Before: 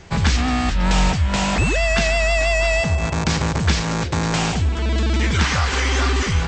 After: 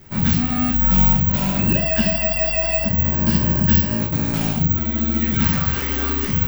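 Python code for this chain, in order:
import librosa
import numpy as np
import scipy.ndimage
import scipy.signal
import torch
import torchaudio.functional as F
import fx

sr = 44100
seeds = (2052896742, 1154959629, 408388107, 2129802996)

y = fx.ripple_eq(x, sr, per_octave=1.3, db=10, at=(1.64, 4.0))
y = fx.room_shoebox(y, sr, seeds[0], volume_m3=220.0, walls='furnished', distance_m=2.8)
y = (np.kron(scipy.signal.resample_poly(y, 1, 2), np.eye(2)[0]) * 2)[:len(y)]
y = fx.peak_eq(y, sr, hz=180.0, db=13.0, octaves=1.2)
y = F.gain(torch.from_numpy(y), -12.5).numpy()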